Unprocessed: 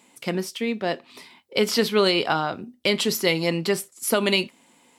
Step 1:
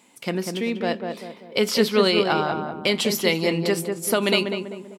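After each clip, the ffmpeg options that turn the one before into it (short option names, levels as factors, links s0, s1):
-filter_complex "[0:a]asplit=2[s0][s1];[s1]adelay=195,lowpass=f=1200:p=1,volume=0.631,asplit=2[s2][s3];[s3]adelay=195,lowpass=f=1200:p=1,volume=0.46,asplit=2[s4][s5];[s5]adelay=195,lowpass=f=1200:p=1,volume=0.46,asplit=2[s6][s7];[s7]adelay=195,lowpass=f=1200:p=1,volume=0.46,asplit=2[s8][s9];[s9]adelay=195,lowpass=f=1200:p=1,volume=0.46,asplit=2[s10][s11];[s11]adelay=195,lowpass=f=1200:p=1,volume=0.46[s12];[s0][s2][s4][s6][s8][s10][s12]amix=inputs=7:normalize=0"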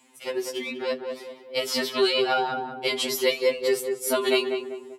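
-af "highpass=f=150:w=0.5412,highpass=f=150:w=1.3066,afftfilt=real='re*2.45*eq(mod(b,6),0)':imag='im*2.45*eq(mod(b,6),0)':win_size=2048:overlap=0.75"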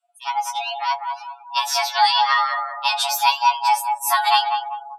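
-af "afftdn=nr=30:nf=-44,afreqshift=450,volume=1.88"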